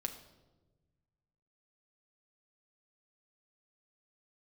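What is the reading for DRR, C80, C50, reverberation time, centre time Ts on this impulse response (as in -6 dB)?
4.5 dB, 12.5 dB, 10.5 dB, 1.2 s, 14 ms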